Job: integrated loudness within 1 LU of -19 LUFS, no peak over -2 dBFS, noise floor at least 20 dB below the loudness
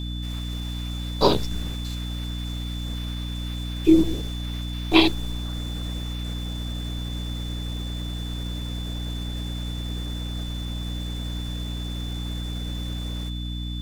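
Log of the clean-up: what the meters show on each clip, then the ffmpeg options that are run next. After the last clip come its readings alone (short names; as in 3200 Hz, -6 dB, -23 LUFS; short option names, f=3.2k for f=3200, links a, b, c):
hum 60 Hz; harmonics up to 300 Hz; hum level -28 dBFS; steady tone 3500 Hz; tone level -38 dBFS; loudness -27.5 LUFS; peak -2.5 dBFS; loudness target -19.0 LUFS
-> -af "bandreject=f=60:t=h:w=6,bandreject=f=120:t=h:w=6,bandreject=f=180:t=h:w=6,bandreject=f=240:t=h:w=6,bandreject=f=300:t=h:w=6"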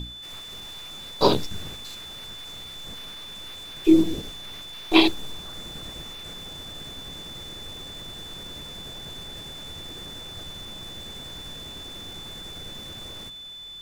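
hum none; steady tone 3500 Hz; tone level -38 dBFS
-> -af "bandreject=f=3.5k:w=30"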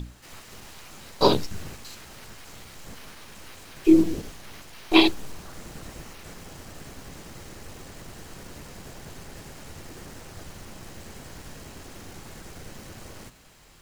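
steady tone none; loudness -22.0 LUFS; peak -2.5 dBFS; loudness target -19.0 LUFS
-> -af "volume=3dB,alimiter=limit=-2dB:level=0:latency=1"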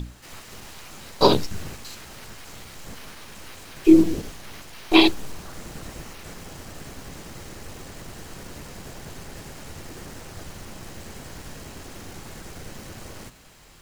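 loudness -19.0 LUFS; peak -2.0 dBFS; noise floor -44 dBFS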